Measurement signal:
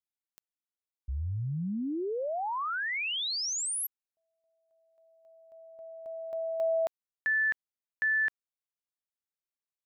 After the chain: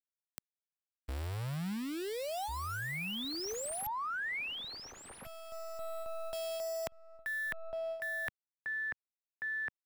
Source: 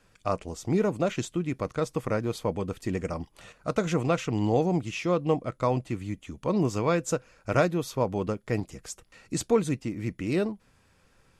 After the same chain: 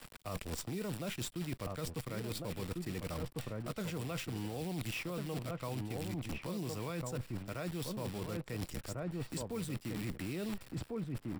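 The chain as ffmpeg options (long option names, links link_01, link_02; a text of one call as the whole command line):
ffmpeg -i in.wav -filter_complex "[0:a]acrusher=bits=7:dc=4:mix=0:aa=0.000001,asplit=2[link_01][link_02];[link_02]adelay=1399,volume=-8dB,highshelf=frequency=4000:gain=-31.5[link_03];[link_01][link_03]amix=inputs=2:normalize=0,acrossover=split=180|2000[link_04][link_05][link_06];[link_04]acompressor=threshold=-38dB:ratio=5[link_07];[link_05]acompressor=threshold=-45dB:ratio=2[link_08];[link_06]acompressor=threshold=-42dB:ratio=5[link_09];[link_07][link_08][link_09]amix=inputs=3:normalize=0,bandreject=frequency=6400:width=5.7,areverse,acompressor=threshold=-46dB:ratio=16:attack=3:release=177:knee=1:detection=peak,areverse,volume=11.5dB" out.wav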